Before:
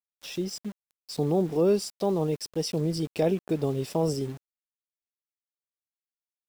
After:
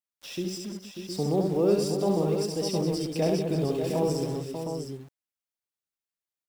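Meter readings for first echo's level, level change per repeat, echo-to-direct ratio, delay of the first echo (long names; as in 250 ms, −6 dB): −3.5 dB, repeats not evenly spaced, 0.0 dB, 70 ms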